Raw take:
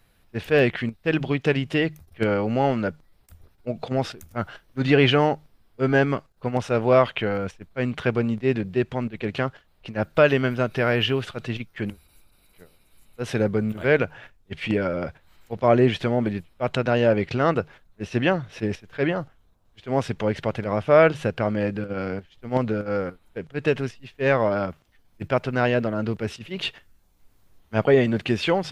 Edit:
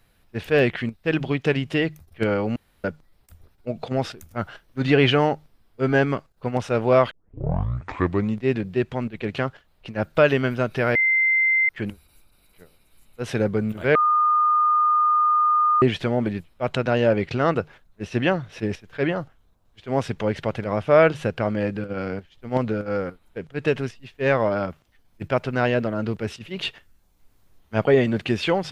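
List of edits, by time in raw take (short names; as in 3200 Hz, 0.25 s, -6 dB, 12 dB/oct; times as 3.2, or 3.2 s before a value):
2.56–2.84 room tone
7.11 tape start 1.26 s
10.95–11.69 bleep 2080 Hz -16 dBFS
13.95–15.82 bleep 1220 Hz -15.5 dBFS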